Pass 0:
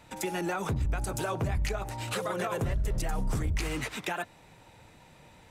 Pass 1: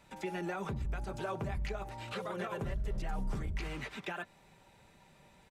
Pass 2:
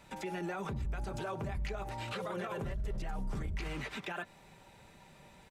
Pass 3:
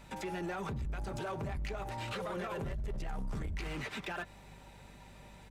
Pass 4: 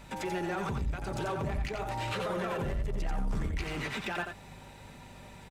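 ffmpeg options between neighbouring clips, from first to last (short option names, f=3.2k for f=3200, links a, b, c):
-filter_complex "[0:a]aecho=1:1:5.1:0.38,acrossover=split=4700[a][b];[b]acompressor=threshold=-56dB:ratio=4:attack=1:release=60[c];[a][c]amix=inputs=2:normalize=0,volume=-7dB"
-af "alimiter=level_in=10.5dB:limit=-24dB:level=0:latency=1:release=58,volume=-10.5dB,volume=4dB"
-filter_complex "[0:a]asplit=2[a][b];[b]aeval=exprs='0.0112*(abs(mod(val(0)/0.0112+3,4)-2)-1)':c=same,volume=-8.5dB[c];[a][c]amix=inputs=2:normalize=0,aeval=exprs='val(0)+0.00178*(sin(2*PI*50*n/s)+sin(2*PI*2*50*n/s)/2+sin(2*PI*3*50*n/s)/3+sin(2*PI*4*50*n/s)/4+sin(2*PI*5*50*n/s)/5)':c=same,volume=-1dB"
-af "aecho=1:1:88:0.531,volume=4dB"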